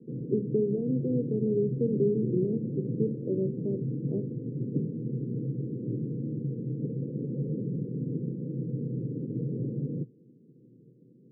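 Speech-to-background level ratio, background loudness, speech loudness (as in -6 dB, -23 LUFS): 3.5 dB, -34.0 LUFS, -30.5 LUFS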